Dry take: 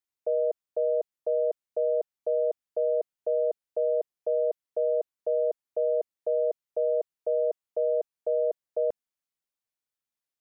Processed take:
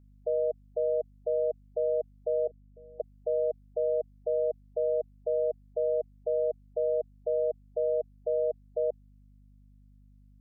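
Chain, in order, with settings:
0:02.47–0:03.00: formant filter i
gate on every frequency bin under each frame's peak −20 dB strong
mains hum 50 Hz, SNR 26 dB
level −2 dB

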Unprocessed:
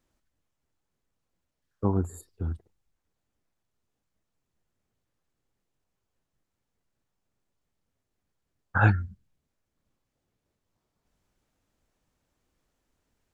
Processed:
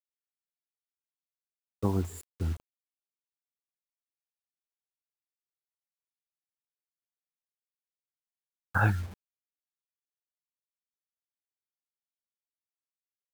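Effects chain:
downward compressor 2 to 1, threshold −24 dBFS, peak gain reduction 5.5 dB
bit reduction 8 bits

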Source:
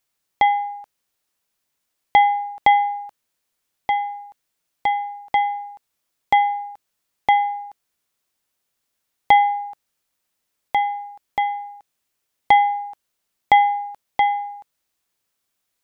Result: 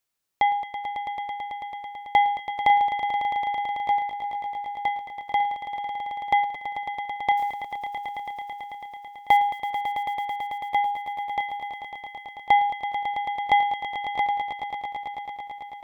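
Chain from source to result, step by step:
0:07.37–0:09.37: floating-point word with a short mantissa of 4 bits
echo that builds up and dies away 110 ms, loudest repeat 5, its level −10.5 dB
level −5 dB

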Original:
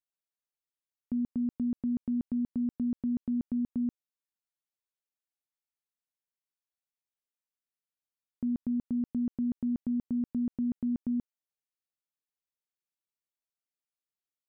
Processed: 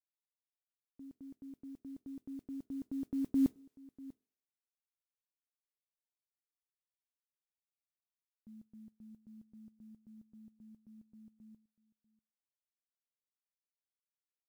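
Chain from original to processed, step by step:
source passing by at 0:03.59, 38 m/s, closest 2.9 metres
noise that follows the level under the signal 30 dB
single-tap delay 643 ms −20.5 dB
on a send at −23 dB: convolution reverb RT60 0.65 s, pre-delay 4 ms
on the sum: level +11 dB

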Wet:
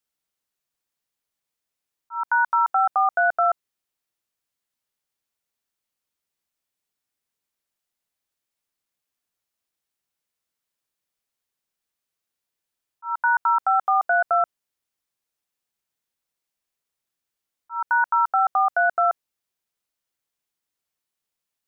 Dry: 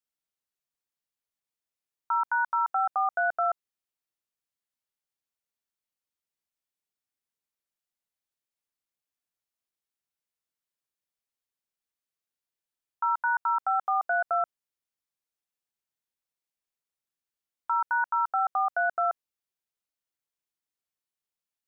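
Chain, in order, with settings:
volume swells 224 ms
level +6.5 dB

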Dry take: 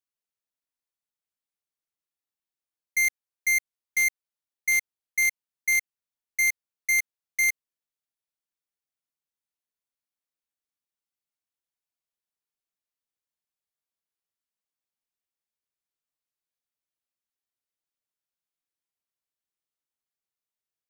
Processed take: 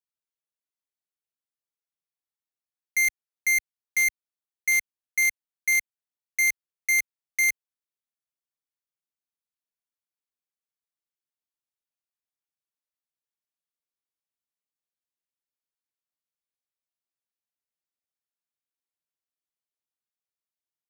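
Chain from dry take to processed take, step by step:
high-pass filter 70 Hz 12 dB per octave
leveller curve on the samples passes 3

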